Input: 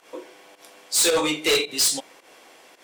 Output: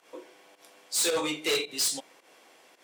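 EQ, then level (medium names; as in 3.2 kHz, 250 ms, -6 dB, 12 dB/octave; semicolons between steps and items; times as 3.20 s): high-pass 92 Hz 24 dB/octave; -7.0 dB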